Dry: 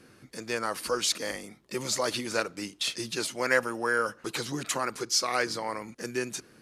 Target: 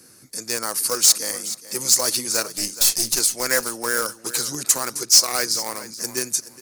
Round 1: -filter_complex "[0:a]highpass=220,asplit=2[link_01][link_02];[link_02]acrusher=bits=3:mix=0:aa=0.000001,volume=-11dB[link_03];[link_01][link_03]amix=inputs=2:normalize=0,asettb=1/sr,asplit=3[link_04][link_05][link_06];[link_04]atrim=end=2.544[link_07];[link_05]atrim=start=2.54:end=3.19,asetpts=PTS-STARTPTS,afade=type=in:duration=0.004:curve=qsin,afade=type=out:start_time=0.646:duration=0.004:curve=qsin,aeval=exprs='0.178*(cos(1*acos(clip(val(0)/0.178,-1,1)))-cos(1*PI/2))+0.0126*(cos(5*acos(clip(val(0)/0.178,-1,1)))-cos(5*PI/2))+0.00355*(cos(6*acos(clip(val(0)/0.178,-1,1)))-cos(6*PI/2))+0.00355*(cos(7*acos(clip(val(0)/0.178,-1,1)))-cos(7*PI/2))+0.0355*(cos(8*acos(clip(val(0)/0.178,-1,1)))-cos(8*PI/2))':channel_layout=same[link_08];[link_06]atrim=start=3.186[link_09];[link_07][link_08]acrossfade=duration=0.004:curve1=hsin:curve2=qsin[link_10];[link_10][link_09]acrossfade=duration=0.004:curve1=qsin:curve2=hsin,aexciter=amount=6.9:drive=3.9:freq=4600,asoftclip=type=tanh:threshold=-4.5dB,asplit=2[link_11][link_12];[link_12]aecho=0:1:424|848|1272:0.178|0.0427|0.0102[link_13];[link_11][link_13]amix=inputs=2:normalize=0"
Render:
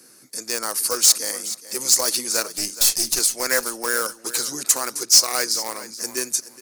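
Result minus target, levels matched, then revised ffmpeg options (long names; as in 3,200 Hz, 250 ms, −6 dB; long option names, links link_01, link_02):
125 Hz band −7.0 dB
-filter_complex "[0:a]highpass=70,asplit=2[link_01][link_02];[link_02]acrusher=bits=3:mix=0:aa=0.000001,volume=-11dB[link_03];[link_01][link_03]amix=inputs=2:normalize=0,asettb=1/sr,asplit=3[link_04][link_05][link_06];[link_04]atrim=end=2.544[link_07];[link_05]atrim=start=2.54:end=3.19,asetpts=PTS-STARTPTS,afade=type=in:duration=0.004:curve=qsin,afade=type=out:start_time=0.646:duration=0.004:curve=qsin,aeval=exprs='0.178*(cos(1*acos(clip(val(0)/0.178,-1,1)))-cos(1*PI/2))+0.0126*(cos(5*acos(clip(val(0)/0.178,-1,1)))-cos(5*PI/2))+0.00355*(cos(6*acos(clip(val(0)/0.178,-1,1)))-cos(6*PI/2))+0.00355*(cos(7*acos(clip(val(0)/0.178,-1,1)))-cos(7*PI/2))+0.0355*(cos(8*acos(clip(val(0)/0.178,-1,1)))-cos(8*PI/2))':channel_layout=same[link_08];[link_06]atrim=start=3.186[link_09];[link_07][link_08]acrossfade=duration=0.004:curve1=hsin:curve2=qsin[link_10];[link_10][link_09]acrossfade=duration=0.004:curve1=qsin:curve2=hsin,aexciter=amount=6.9:drive=3.9:freq=4600,asoftclip=type=tanh:threshold=-4.5dB,asplit=2[link_11][link_12];[link_12]aecho=0:1:424|848|1272:0.178|0.0427|0.0102[link_13];[link_11][link_13]amix=inputs=2:normalize=0"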